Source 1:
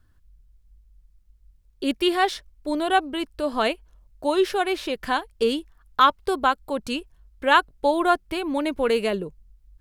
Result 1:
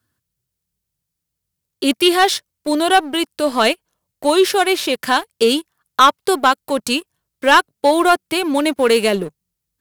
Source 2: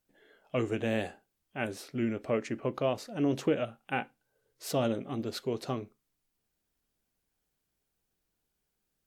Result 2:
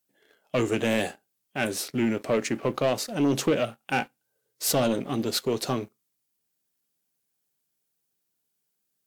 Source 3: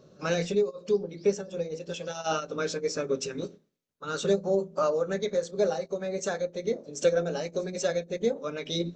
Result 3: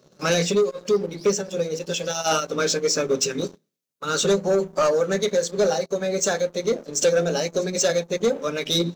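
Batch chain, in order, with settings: high-pass 110 Hz 24 dB/octave; treble shelf 4.2 kHz +10.5 dB; waveshaping leveller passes 2

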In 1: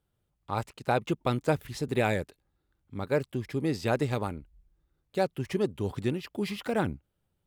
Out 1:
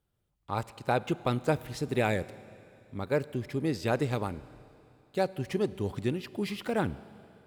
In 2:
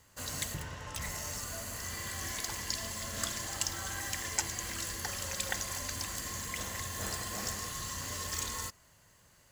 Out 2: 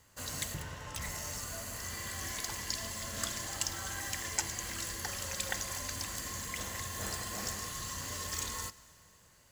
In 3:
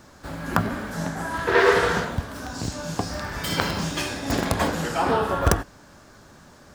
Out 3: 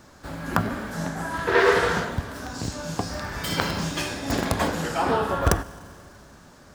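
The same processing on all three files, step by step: Schroeder reverb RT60 2.9 s, combs from 33 ms, DRR 17.5 dB; trim -1 dB

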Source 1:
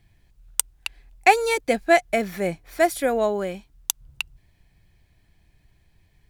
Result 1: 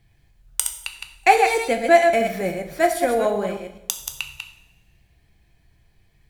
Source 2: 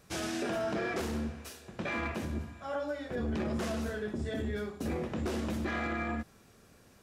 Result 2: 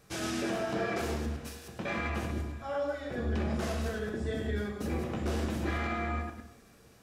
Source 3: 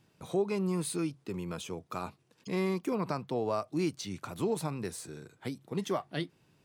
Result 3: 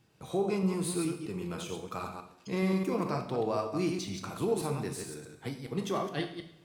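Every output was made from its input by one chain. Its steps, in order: chunks repeated in reverse 105 ms, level -5 dB; two-slope reverb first 0.64 s, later 1.6 s, from -17 dB, DRR 4.5 dB; trim -1 dB

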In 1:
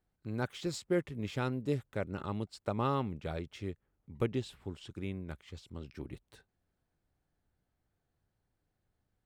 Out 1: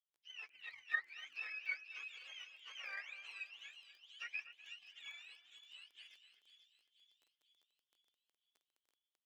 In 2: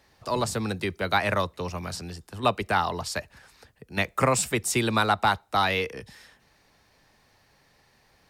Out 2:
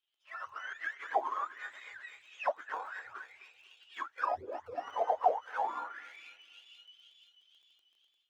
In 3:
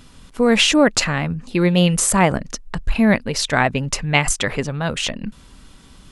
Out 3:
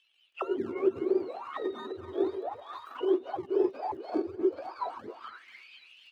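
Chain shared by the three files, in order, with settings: spectrum inverted on a logarithmic axis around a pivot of 810 Hz; in parallel at -3 dB: decimation with a swept rate 31×, swing 100% 1.5 Hz; on the sum: peaking EQ 190 Hz -13 dB 2.8 oct; on a send: two-band feedback delay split 2.8 kHz, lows 248 ms, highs 487 ms, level -10 dB; on the sum: auto-wah 380–3200 Hz, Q 12, down, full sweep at -18 dBFS; crackle 14 per s -62 dBFS; level rider gain up to 7 dB; resonant low shelf 240 Hz -8.5 dB, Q 1.5; trim -1.5 dB

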